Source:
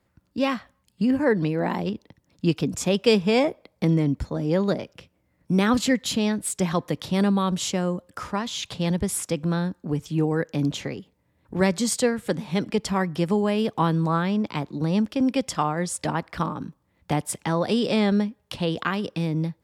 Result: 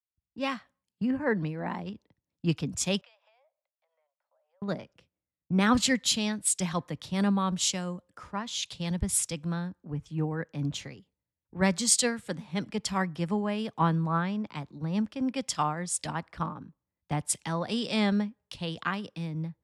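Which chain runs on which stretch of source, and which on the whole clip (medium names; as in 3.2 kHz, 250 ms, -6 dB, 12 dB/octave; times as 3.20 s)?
3.01–4.62 s: steep high-pass 550 Hz 96 dB/octave + compression 8:1, threshold -41 dBFS + tape spacing loss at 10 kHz 31 dB
whole clip: low-pass 11 kHz 24 dB/octave; dynamic bell 400 Hz, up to -7 dB, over -36 dBFS, Q 0.97; three bands expanded up and down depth 100%; trim -4 dB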